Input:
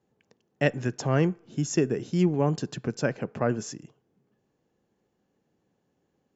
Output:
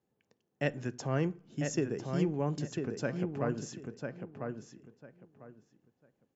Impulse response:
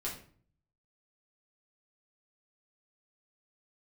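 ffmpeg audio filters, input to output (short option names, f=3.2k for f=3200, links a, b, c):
-filter_complex "[0:a]asplit=2[a][b];[b]adelay=998,lowpass=f=3.1k:p=1,volume=-5dB,asplit=2[c][d];[d]adelay=998,lowpass=f=3.1k:p=1,volume=0.21,asplit=2[e][f];[f]adelay=998,lowpass=f=3.1k:p=1,volume=0.21[g];[a][c][e][g]amix=inputs=4:normalize=0,asplit=2[h][i];[1:a]atrim=start_sample=2205,asetrate=66150,aresample=44100[j];[i][j]afir=irnorm=-1:irlink=0,volume=-15dB[k];[h][k]amix=inputs=2:normalize=0,volume=-8.5dB"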